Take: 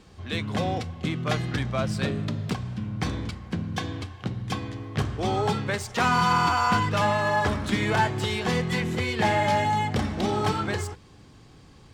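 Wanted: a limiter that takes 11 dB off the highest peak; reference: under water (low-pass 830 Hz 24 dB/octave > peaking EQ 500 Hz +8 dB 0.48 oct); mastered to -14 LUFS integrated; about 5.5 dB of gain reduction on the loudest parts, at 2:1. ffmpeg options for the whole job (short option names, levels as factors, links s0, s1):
-af "acompressor=threshold=0.0398:ratio=2,alimiter=level_in=1.33:limit=0.0631:level=0:latency=1,volume=0.75,lowpass=f=830:w=0.5412,lowpass=f=830:w=1.3066,equalizer=f=500:t=o:w=0.48:g=8,volume=11.9"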